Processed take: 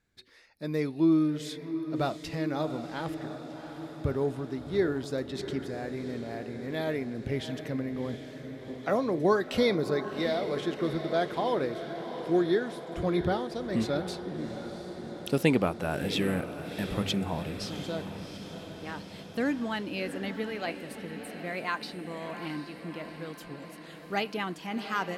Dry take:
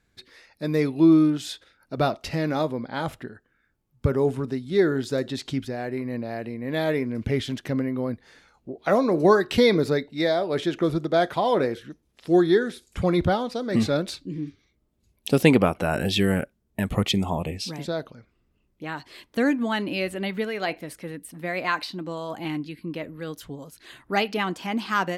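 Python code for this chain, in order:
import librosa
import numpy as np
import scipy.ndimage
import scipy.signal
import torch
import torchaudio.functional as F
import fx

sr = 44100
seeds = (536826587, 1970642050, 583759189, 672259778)

y = fx.hum_notches(x, sr, base_hz=50, count=2)
y = fx.echo_diffused(y, sr, ms=722, feedback_pct=65, wet_db=-10.0)
y = y * 10.0 ** (-7.0 / 20.0)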